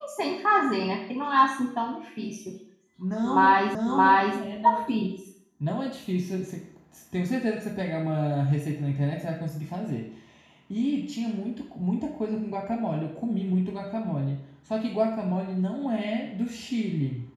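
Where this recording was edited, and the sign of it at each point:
3.75 repeat of the last 0.62 s

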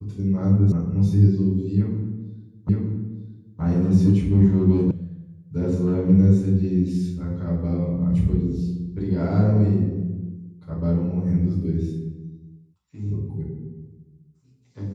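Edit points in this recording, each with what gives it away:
0.72 sound cut off
2.69 repeat of the last 0.92 s
4.91 sound cut off

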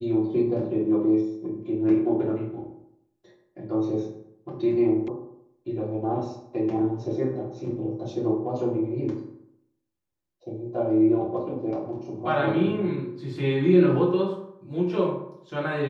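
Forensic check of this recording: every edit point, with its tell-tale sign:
5.08 sound cut off

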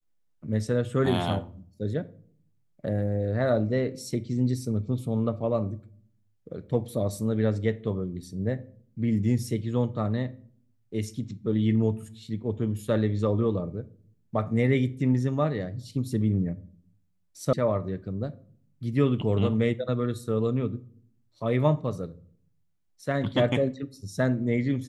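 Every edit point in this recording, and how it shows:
17.53 sound cut off

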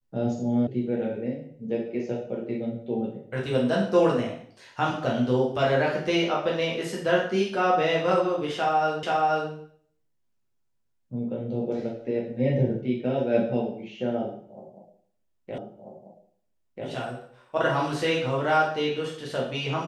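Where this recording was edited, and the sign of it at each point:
0.67 sound cut off
9.03 repeat of the last 0.48 s
15.58 repeat of the last 1.29 s

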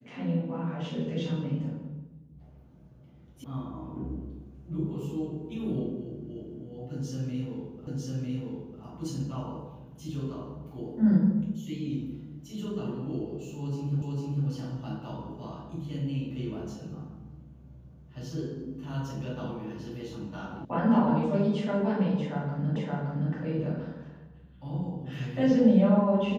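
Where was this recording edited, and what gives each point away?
3.44 sound cut off
7.87 repeat of the last 0.95 s
14.02 repeat of the last 0.45 s
20.65 sound cut off
22.76 repeat of the last 0.57 s

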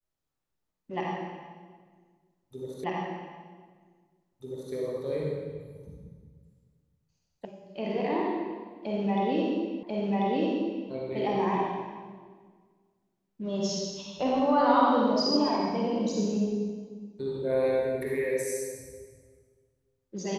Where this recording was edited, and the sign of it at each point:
2.84 repeat of the last 1.89 s
7.45 sound cut off
9.83 repeat of the last 1.04 s

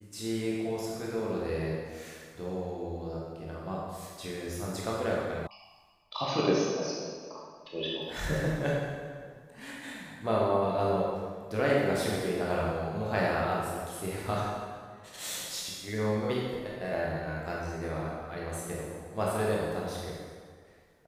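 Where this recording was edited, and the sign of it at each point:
5.47 sound cut off

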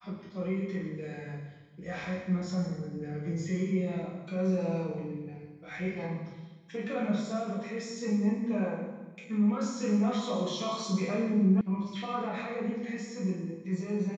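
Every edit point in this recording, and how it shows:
11.61 sound cut off

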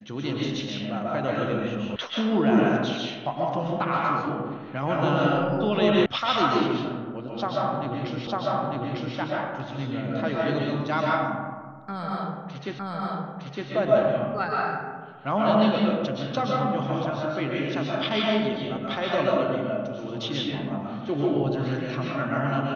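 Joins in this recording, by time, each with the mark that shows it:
1.96 sound cut off
6.06 sound cut off
8.27 repeat of the last 0.9 s
12.79 repeat of the last 0.91 s

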